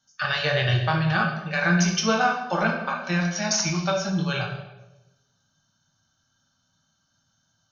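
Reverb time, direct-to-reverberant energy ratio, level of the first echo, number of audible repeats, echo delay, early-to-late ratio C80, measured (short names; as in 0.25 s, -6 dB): 1.0 s, 0.0 dB, none, none, none, 7.5 dB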